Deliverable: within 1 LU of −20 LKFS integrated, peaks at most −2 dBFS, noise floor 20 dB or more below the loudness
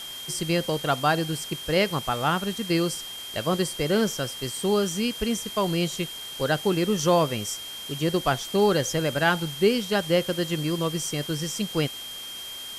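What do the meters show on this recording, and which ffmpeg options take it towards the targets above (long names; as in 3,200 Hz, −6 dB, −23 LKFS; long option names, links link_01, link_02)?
interfering tone 3,200 Hz; level of the tone −36 dBFS; background noise floor −38 dBFS; target noise floor −46 dBFS; integrated loudness −25.5 LKFS; sample peak −8.0 dBFS; target loudness −20.0 LKFS
→ -af "bandreject=frequency=3200:width=30"
-af "afftdn=noise_reduction=8:noise_floor=-38"
-af "volume=5.5dB"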